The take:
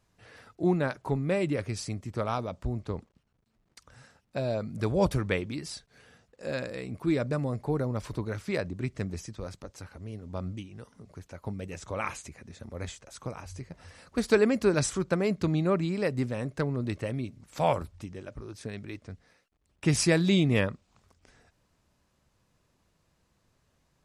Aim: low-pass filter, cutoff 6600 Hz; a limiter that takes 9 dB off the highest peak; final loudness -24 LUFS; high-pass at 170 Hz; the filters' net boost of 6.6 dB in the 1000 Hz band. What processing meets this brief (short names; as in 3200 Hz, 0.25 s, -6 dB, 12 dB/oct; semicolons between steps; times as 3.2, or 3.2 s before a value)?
HPF 170 Hz; LPF 6600 Hz; bell 1000 Hz +8.5 dB; gain +7.5 dB; limiter -8.5 dBFS